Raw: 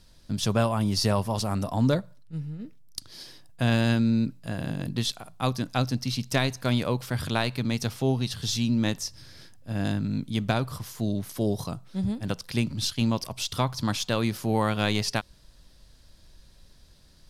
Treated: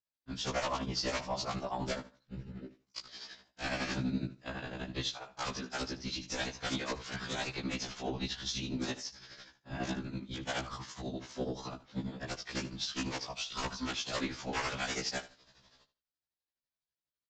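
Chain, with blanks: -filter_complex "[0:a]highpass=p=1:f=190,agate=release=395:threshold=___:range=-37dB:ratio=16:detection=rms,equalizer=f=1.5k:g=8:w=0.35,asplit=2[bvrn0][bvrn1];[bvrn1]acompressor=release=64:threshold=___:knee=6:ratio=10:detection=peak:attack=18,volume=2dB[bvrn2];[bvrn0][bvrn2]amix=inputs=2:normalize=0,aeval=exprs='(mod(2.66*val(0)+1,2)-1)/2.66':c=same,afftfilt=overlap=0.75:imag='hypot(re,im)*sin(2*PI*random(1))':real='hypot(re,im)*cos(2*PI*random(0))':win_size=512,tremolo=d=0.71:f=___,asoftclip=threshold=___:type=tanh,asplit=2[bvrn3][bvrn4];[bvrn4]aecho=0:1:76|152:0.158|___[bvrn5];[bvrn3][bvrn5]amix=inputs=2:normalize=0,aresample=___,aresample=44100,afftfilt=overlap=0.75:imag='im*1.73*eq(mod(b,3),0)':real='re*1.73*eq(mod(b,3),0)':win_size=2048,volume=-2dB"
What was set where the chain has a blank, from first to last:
-48dB, -36dB, 12, -19.5dB, 0.0365, 16000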